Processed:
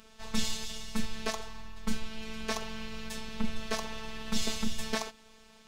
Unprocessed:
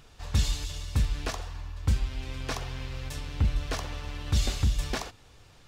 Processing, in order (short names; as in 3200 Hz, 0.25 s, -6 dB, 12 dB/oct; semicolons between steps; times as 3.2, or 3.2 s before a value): HPF 45 Hz 6 dB/oct; robotiser 221 Hz; gain +2.5 dB